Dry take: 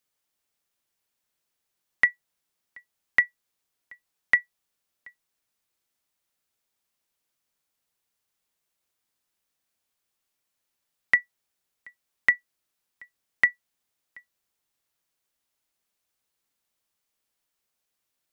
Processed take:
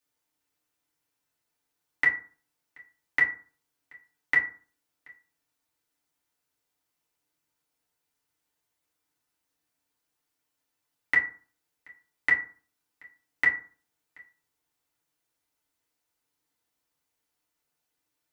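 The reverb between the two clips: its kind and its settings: FDN reverb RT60 0.41 s, low-frequency decay 1.1×, high-frequency decay 0.5×, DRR -5 dB; trim -5.5 dB

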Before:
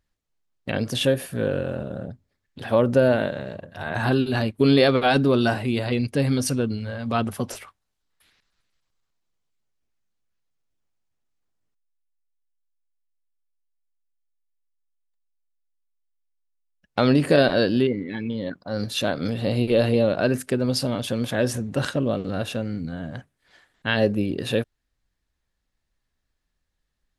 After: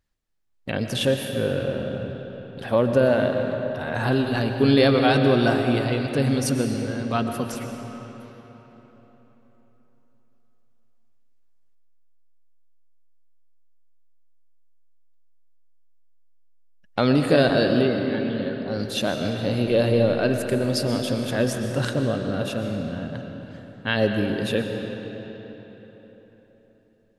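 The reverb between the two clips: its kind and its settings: algorithmic reverb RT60 4.1 s, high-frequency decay 0.7×, pre-delay 80 ms, DRR 4.5 dB; trim -1 dB

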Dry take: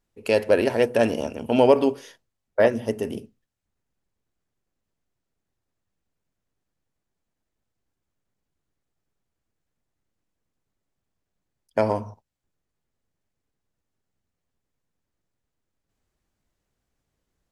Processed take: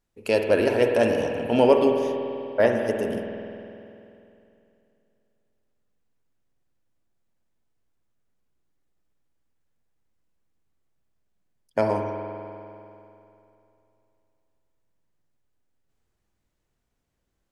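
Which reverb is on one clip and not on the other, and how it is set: spring tank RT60 2.8 s, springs 49 ms, chirp 50 ms, DRR 3 dB; trim -1.5 dB

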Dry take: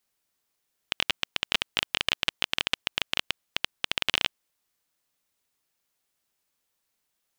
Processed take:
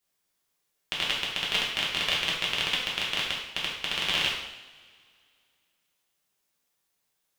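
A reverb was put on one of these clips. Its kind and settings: two-slope reverb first 0.77 s, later 2.4 s, from -19 dB, DRR -5 dB; trim -5 dB

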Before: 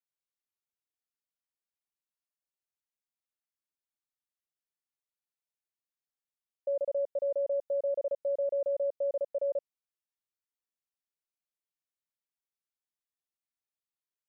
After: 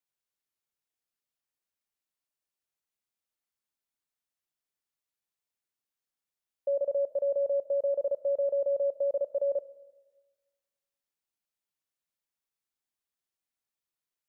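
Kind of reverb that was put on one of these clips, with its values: algorithmic reverb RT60 1.3 s, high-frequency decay 0.95×, pre-delay 15 ms, DRR 16.5 dB; trim +2.5 dB

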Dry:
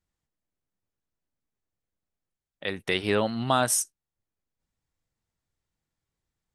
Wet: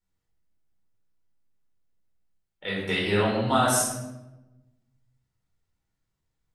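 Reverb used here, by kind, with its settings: simulated room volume 430 m³, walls mixed, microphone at 4.3 m; trim -8.5 dB

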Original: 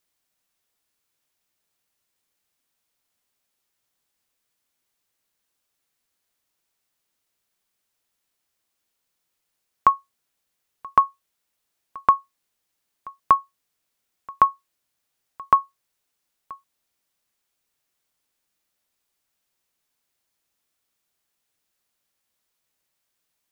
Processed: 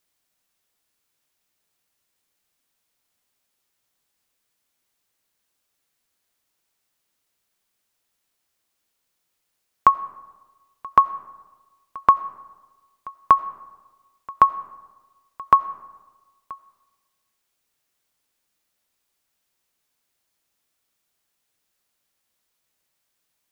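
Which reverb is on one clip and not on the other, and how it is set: algorithmic reverb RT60 1.3 s, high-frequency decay 0.45×, pre-delay 45 ms, DRR 17.5 dB; trim +2 dB

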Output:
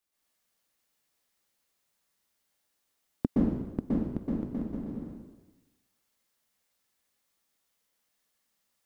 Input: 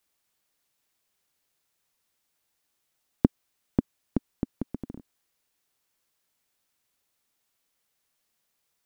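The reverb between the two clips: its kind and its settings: plate-style reverb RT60 1.1 s, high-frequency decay 0.9×, pre-delay 110 ms, DRR -7.5 dB; trim -8.5 dB

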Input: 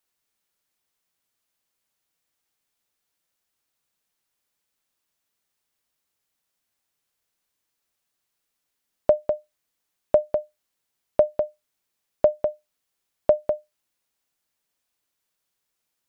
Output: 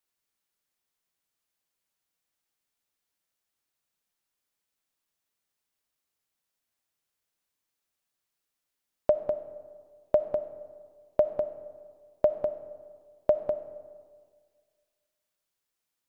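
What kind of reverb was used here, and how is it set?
algorithmic reverb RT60 1.8 s, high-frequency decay 0.45×, pre-delay 20 ms, DRR 12 dB; trim -5 dB

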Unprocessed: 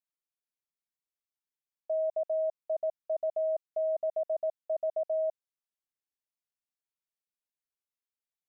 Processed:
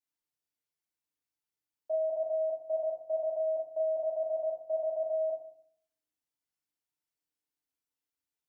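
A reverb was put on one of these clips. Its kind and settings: FDN reverb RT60 0.61 s, low-frequency decay 1.55×, high-frequency decay 0.9×, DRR -6.5 dB; trim -6 dB

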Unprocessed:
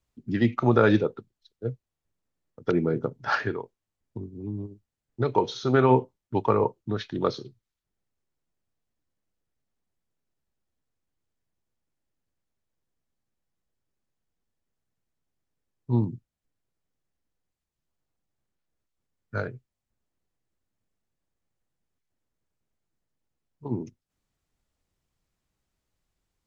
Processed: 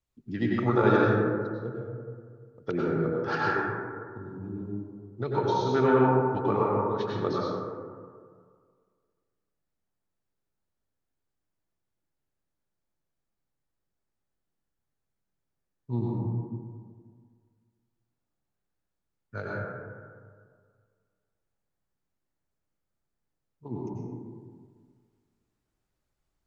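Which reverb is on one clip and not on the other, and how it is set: plate-style reverb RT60 1.9 s, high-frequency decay 0.3×, pre-delay 80 ms, DRR -5 dB; trim -7 dB

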